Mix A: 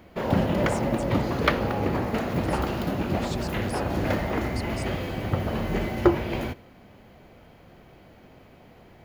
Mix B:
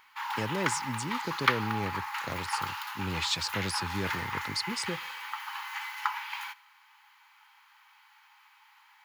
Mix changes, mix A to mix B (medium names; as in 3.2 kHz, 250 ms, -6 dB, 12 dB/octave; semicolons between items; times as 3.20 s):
speech: add peaking EQ 3.4 kHz +12 dB 2.6 oct; background: add brick-wall FIR high-pass 800 Hz